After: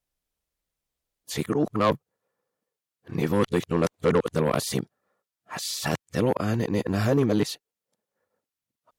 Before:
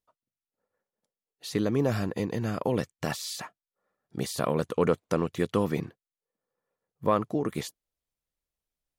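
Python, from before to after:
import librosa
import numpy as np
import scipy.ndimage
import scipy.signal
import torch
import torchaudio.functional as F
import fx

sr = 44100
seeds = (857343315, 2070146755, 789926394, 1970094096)

y = np.flip(x).copy()
y = fx.cheby_harmonics(y, sr, harmonics=(5, 6, 7), levels_db=(-12, -33, -23), full_scale_db=-11.0)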